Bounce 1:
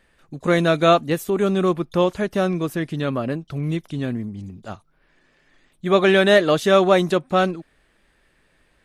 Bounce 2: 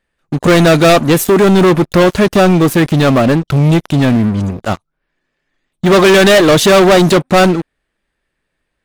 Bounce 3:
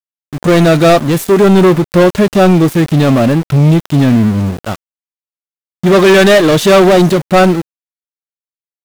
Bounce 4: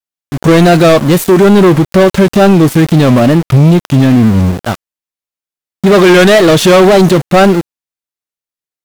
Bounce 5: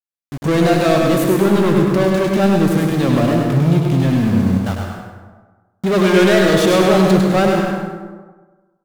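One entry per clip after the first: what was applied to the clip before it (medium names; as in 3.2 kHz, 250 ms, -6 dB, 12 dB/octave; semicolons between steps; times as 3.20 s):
waveshaping leveller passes 5
level rider gain up to 7 dB; harmonic-percussive split percussive -8 dB; small samples zeroed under -21 dBFS; trim -1 dB
peak limiter -6 dBFS, peak gain reduction 4 dB; wow and flutter 120 cents; trim +4.5 dB
on a send: feedback delay 100 ms, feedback 39%, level -5 dB; on the sum: plate-style reverb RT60 1.3 s, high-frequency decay 0.45×, pre-delay 105 ms, DRR 3 dB; trim -10.5 dB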